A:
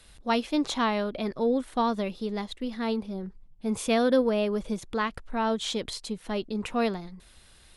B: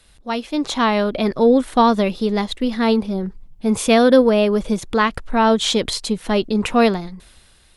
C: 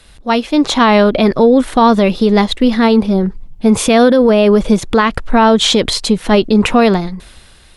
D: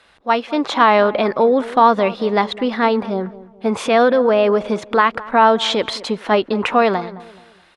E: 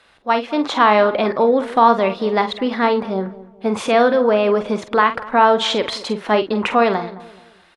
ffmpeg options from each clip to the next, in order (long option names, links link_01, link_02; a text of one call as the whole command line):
ffmpeg -i in.wav -af "dynaudnorm=framelen=140:gausssize=11:maxgain=11.5dB,volume=1dB" out.wav
ffmpeg -i in.wav -af "highshelf=frequency=6400:gain=-5.5,alimiter=level_in=11dB:limit=-1dB:release=50:level=0:latency=1,volume=-1dB" out.wav
ffmpeg -i in.wav -filter_complex "[0:a]bandpass=frequency=1100:width_type=q:width=0.7:csg=0,asplit=2[link_01][link_02];[link_02]adelay=214,lowpass=frequency=1300:poles=1,volume=-17dB,asplit=2[link_03][link_04];[link_04]adelay=214,lowpass=frequency=1300:poles=1,volume=0.38,asplit=2[link_05][link_06];[link_06]adelay=214,lowpass=frequency=1300:poles=1,volume=0.38[link_07];[link_01][link_03][link_05][link_07]amix=inputs=4:normalize=0" out.wav
ffmpeg -i in.wav -filter_complex "[0:a]asplit=2[link_01][link_02];[link_02]adelay=47,volume=-10dB[link_03];[link_01][link_03]amix=inputs=2:normalize=0,volume=-1dB" out.wav